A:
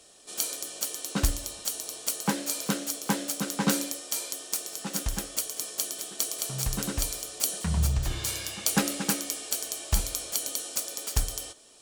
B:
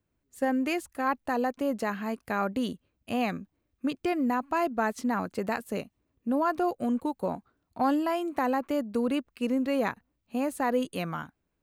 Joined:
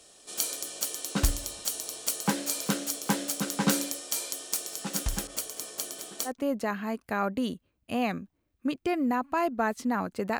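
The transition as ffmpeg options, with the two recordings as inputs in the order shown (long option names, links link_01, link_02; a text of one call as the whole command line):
ffmpeg -i cue0.wav -i cue1.wav -filter_complex "[0:a]asettb=1/sr,asplit=3[link_01][link_02][link_03];[link_01]atrim=end=5.274[link_04];[link_02]atrim=start=5.27:end=6.32,asetpts=PTS-STARTPTS,afade=type=in:duration=0.004:curve=qsin,afade=type=out:start_time=1.046:duration=0.004:curve=qsin,adynamicequalizer=threshold=0.00316:dfrequency=2300:dqfactor=0.7:tfrequency=2300:tqfactor=0.7:attack=5:release=100:ratio=0.375:range=2.5:mode=cutabove:tftype=highshelf[link_05];[link_03]atrim=start=6.316[link_06];[link_04][link_05]acrossfade=duration=0.004:curve1=hsin:curve2=qsin[link_07];[link_07][link_06]acrossfade=duration=0.004:curve1=qsin:curve2=hsin,apad=whole_dur=10.39,atrim=end=10.39,atrim=end=6.32,asetpts=PTS-STARTPTS[link_08];[1:a]atrim=start=1.43:end=5.58,asetpts=PTS-STARTPTS[link_09];[link_08][link_09]acrossfade=duration=0.08:curve1=tri:curve2=tri" out.wav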